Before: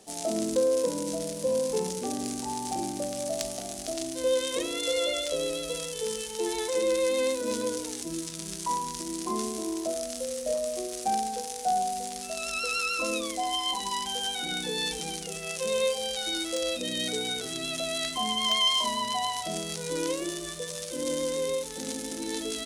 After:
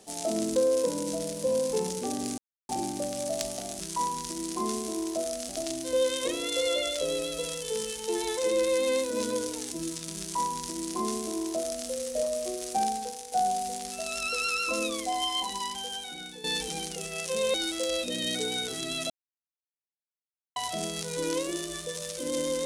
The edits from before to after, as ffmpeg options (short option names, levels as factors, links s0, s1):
-filter_complex "[0:a]asplit=10[s0][s1][s2][s3][s4][s5][s6][s7][s8][s9];[s0]atrim=end=2.38,asetpts=PTS-STARTPTS,afade=t=out:st=2.376:d=0.004:c=hsin[s10];[s1]atrim=start=2.38:end=2.69,asetpts=PTS-STARTPTS,volume=0[s11];[s2]atrim=start=2.69:end=3.802,asetpts=PTS-STARTPTS,afade=t=in:d=0.004:c=hsin[s12];[s3]atrim=start=8.498:end=10.192[s13];[s4]atrim=start=3.798:end=11.63,asetpts=PTS-STARTPTS,afade=t=out:st=7.402:d=0.43:silence=0.421697[s14];[s5]atrim=start=11.63:end=14.75,asetpts=PTS-STARTPTS,afade=t=in:d=0.004:c=hsin:silence=0.421697,afade=t=out:st=1.96:d=1.16:silence=0.199526[s15];[s6]atrim=start=14.75:end=15.852,asetpts=PTS-STARTPTS,afade=t=in:d=0.004:c=hsin:silence=0.199526[s16];[s7]atrim=start=16.268:end=17.83,asetpts=PTS-STARTPTS,afade=t=out:st=1.558:d=0.004:c=hsin[s17];[s8]atrim=start=17.83:end=19.29,asetpts=PTS-STARTPTS,volume=0[s18];[s9]atrim=start=19.29,asetpts=PTS-STARTPTS,afade=t=in:d=0.004:c=hsin[s19];[s10][s11][s12]concat=n=3:v=0:a=1[s20];[s20][s13]acrossfade=d=0.004:c1=hsin:c2=hsin[s21];[s14][s15][s16]concat=n=3:v=0:a=1[s22];[s21][s22]acrossfade=d=0.004:c1=hsin:c2=hsin[s23];[s17][s18][s19]concat=n=3:v=0:a=1[s24];[s23][s24]acrossfade=d=0.004:c1=hsin:c2=hsin"